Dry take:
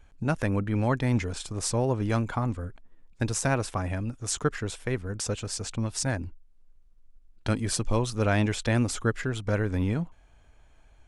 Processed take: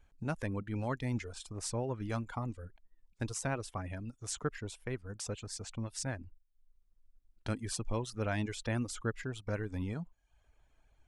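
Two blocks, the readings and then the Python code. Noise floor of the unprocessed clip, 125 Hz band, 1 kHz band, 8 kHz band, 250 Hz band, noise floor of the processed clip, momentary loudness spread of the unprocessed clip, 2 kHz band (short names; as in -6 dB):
-57 dBFS, -10.5 dB, -9.5 dB, -9.0 dB, -10.0 dB, -72 dBFS, 7 LU, -9.5 dB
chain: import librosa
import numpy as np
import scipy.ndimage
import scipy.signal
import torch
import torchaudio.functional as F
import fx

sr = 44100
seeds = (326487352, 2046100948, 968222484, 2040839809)

y = fx.dereverb_blind(x, sr, rt60_s=0.63)
y = F.gain(torch.from_numpy(y), -9.0).numpy()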